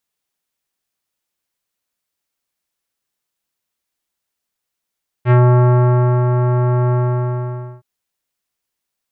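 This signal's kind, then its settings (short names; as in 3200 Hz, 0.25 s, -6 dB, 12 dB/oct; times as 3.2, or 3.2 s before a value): synth note square B2 24 dB/oct, low-pass 1300 Hz, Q 0.93, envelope 1 oct, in 0.16 s, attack 58 ms, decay 0.93 s, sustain -5.5 dB, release 0.90 s, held 1.67 s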